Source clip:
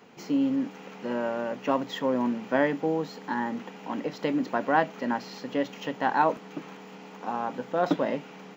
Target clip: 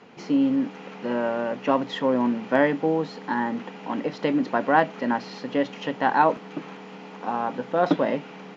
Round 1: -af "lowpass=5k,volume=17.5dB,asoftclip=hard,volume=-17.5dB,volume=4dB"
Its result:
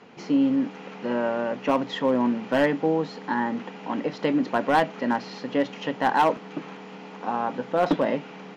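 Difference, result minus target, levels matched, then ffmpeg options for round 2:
overloaded stage: distortion +35 dB
-af "lowpass=5k,volume=10dB,asoftclip=hard,volume=-10dB,volume=4dB"

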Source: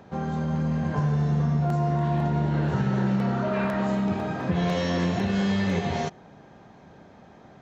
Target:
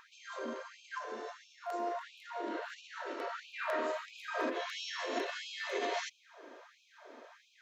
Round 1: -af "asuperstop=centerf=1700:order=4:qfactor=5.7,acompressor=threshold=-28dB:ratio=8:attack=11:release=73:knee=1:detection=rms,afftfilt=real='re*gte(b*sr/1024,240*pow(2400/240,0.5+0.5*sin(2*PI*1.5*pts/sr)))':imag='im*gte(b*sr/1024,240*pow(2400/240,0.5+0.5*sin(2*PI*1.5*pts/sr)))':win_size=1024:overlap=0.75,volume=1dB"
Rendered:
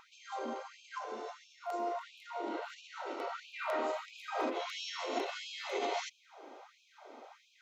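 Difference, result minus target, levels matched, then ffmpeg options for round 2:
2000 Hz band -3.0 dB
-af "asuperstop=centerf=800:order=4:qfactor=5.7,acompressor=threshold=-28dB:ratio=8:attack=11:release=73:knee=1:detection=rms,afftfilt=real='re*gte(b*sr/1024,240*pow(2400/240,0.5+0.5*sin(2*PI*1.5*pts/sr)))':imag='im*gte(b*sr/1024,240*pow(2400/240,0.5+0.5*sin(2*PI*1.5*pts/sr)))':win_size=1024:overlap=0.75,volume=1dB"

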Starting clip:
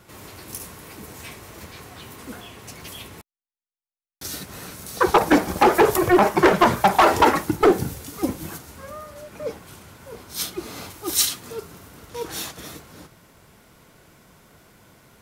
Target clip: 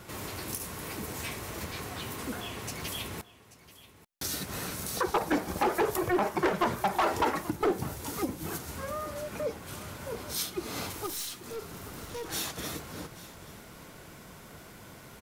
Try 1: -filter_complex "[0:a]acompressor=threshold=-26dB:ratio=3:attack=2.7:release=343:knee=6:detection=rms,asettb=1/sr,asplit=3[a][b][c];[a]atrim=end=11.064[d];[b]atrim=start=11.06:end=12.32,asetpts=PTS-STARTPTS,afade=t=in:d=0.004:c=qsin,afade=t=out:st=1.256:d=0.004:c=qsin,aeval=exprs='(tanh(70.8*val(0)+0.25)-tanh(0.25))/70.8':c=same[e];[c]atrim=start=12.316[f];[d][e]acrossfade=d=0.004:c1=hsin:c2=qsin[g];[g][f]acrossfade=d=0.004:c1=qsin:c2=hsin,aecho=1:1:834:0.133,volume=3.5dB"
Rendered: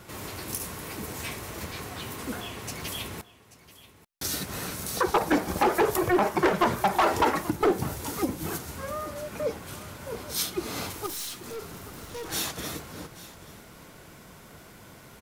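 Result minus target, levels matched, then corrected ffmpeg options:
compressor: peak gain reduction -4.5 dB
-filter_complex "[0:a]acompressor=threshold=-32.5dB:ratio=3:attack=2.7:release=343:knee=6:detection=rms,asettb=1/sr,asplit=3[a][b][c];[a]atrim=end=11.064[d];[b]atrim=start=11.06:end=12.32,asetpts=PTS-STARTPTS,afade=t=in:d=0.004:c=qsin,afade=t=out:st=1.256:d=0.004:c=qsin,aeval=exprs='(tanh(70.8*val(0)+0.25)-tanh(0.25))/70.8':c=same[e];[c]atrim=start=12.316[f];[d][e]acrossfade=d=0.004:c1=hsin:c2=qsin[g];[g][f]acrossfade=d=0.004:c1=qsin:c2=hsin,aecho=1:1:834:0.133,volume=3.5dB"

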